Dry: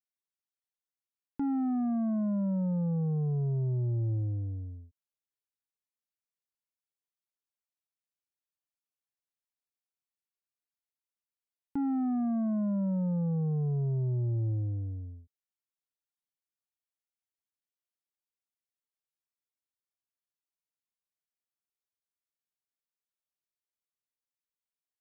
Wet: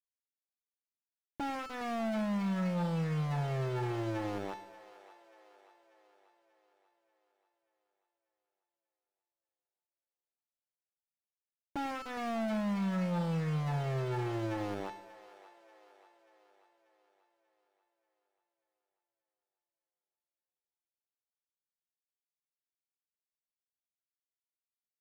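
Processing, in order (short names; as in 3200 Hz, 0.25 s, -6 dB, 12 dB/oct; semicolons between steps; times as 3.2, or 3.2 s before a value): tube stage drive 36 dB, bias 0.6; comb 5.9 ms, depth 82%; bit-crush 6-bit; de-hum 438.9 Hz, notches 34; overdrive pedal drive 30 dB, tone 1300 Hz, clips at -28 dBFS; split-band echo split 460 Hz, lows 96 ms, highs 0.587 s, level -15.5 dB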